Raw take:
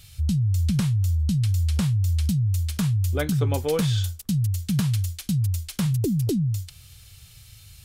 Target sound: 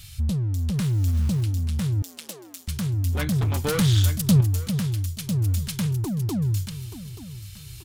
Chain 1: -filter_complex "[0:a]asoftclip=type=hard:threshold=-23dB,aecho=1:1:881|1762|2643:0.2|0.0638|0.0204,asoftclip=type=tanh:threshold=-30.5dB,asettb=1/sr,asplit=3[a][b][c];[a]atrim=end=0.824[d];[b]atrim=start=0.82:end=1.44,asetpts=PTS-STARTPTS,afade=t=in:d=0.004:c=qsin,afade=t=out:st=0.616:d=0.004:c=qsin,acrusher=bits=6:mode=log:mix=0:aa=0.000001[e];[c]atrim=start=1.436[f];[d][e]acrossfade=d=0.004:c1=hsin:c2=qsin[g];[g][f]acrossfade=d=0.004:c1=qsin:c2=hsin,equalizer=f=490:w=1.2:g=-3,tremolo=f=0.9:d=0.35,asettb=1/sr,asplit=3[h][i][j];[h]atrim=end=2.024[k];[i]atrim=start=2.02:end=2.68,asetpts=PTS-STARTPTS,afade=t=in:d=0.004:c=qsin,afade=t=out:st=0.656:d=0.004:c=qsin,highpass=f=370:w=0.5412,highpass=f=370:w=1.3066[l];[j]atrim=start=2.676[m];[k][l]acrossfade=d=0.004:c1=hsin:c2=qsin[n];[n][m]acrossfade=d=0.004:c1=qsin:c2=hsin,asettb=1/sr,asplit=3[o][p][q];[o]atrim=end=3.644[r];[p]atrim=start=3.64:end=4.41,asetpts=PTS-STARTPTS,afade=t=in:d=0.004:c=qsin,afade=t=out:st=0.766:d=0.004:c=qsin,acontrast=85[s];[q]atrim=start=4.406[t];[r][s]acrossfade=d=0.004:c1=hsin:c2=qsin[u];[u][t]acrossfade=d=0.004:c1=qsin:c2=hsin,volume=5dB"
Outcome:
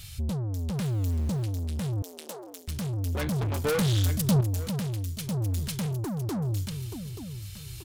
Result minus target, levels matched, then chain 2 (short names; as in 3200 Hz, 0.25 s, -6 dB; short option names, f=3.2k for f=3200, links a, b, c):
soft clip: distortion +15 dB; 500 Hz band +6.5 dB
-filter_complex "[0:a]asoftclip=type=hard:threshold=-23dB,aecho=1:1:881|1762|2643:0.2|0.0638|0.0204,asoftclip=type=tanh:threshold=-19dB,asettb=1/sr,asplit=3[a][b][c];[a]atrim=end=0.824[d];[b]atrim=start=0.82:end=1.44,asetpts=PTS-STARTPTS,afade=t=in:d=0.004:c=qsin,afade=t=out:st=0.616:d=0.004:c=qsin,acrusher=bits=6:mode=log:mix=0:aa=0.000001[e];[c]atrim=start=1.436[f];[d][e]acrossfade=d=0.004:c1=hsin:c2=qsin[g];[g][f]acrossfade=d=0.004:c1=qsin:c2=hsin,equalizer=f=490:w=1.2:g=-9.5,tremolo=f=0.9:d=0.35,asettb=1/sr,asplit=3[h][i][j];[h]atrim=end=2.024[k];[i]atrim=start=2.02:end=2.68,asetpts=PTS-STARTPTS,afade=t=in:d=0.004:c=qsin,afade=t=out:st=0.656:d=0.004:c=qsin,highpass=f=370:w=0.5412,highpass=f=370:w=1.3066[l];[j]atrim=start=2.676[m];[k][l]acrossfade=d=0.004:c1=hsin:c2=qsin[n];[n][m]acrossfade=d=0.004:c1=qsin:c2=hsin,asettb=1/sr,asplit=3[o][p][q];[o]atrim=end=3.644[r];[p]atrim=start=3.64:end=4.41,asetpts=PTS-STARTPTS,afade=t=in:d=0.004:c=qsin,afade=t=out:st=0.766:d=0.004:c=qsin,acontrast=85[s];[q]atrim=start=4.406[t];[r][s]acrossfade=d=0.004:c1=hsin:c2=qsin[u];[u][t]acrossfade=d=0.004:c1=qsin:c2=hsin,volume=5dB"